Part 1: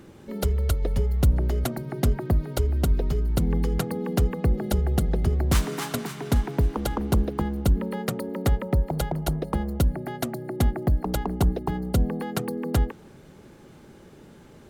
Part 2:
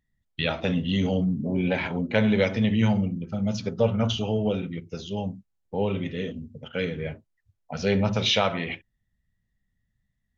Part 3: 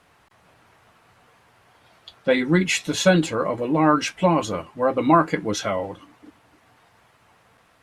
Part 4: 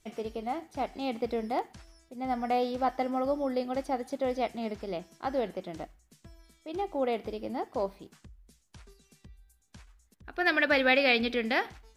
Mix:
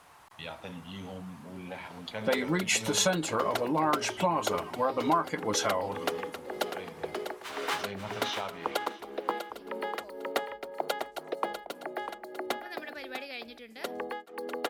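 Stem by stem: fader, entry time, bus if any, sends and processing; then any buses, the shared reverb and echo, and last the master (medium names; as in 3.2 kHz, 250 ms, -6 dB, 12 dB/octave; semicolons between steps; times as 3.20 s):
+2.0 dB, 1.90 s, muted 12.94–13.71 s, no bus, no send, echo send -9 dB, high-pass 280 Hz 24 dB/octave; three-band isolator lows -14 dB, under 450 Hz, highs -20 dB, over 3.8 kHz; tremolo of two beating tones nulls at 1.9 Hz
-19.0 dB, 0.00 s, bus A, no send, echo send -20.5 dB, none
-4.0 dB, 0.00 s, bus A, no send, no echo send, none
-19.5 dB, 2.25 s, no bus, no send, no echo send, treble shelf 8.2 kHz +8 dB
bus A: 0.0 dB, peaking EQ 940 Hz +9.5 dB 1.1 oct; compression 3:1, threshold -28 dBFS, peak gain reduction 15 dB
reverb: none
echo: delay 647 ms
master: treble shelf 4.5 kHz +11.5 dB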